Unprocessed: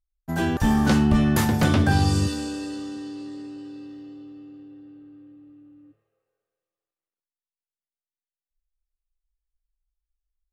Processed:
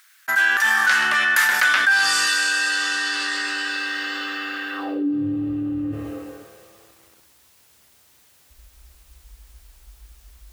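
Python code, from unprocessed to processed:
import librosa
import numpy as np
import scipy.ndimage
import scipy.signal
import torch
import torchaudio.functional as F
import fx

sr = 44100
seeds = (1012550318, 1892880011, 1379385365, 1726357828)

p1 = fx.filter_sweep_highpass(x, sr, from_hz=1600.0, to_hz=70.0, start_s=4.72, end_s=5.35, q=4.2)
p2 = p1 + fx.echo_feedback(p1, sr, ms=130, feedback_pct=53, wet_db=-18, dry=0)
y = fx.env_flatten(p2, sr, amount_pct=70)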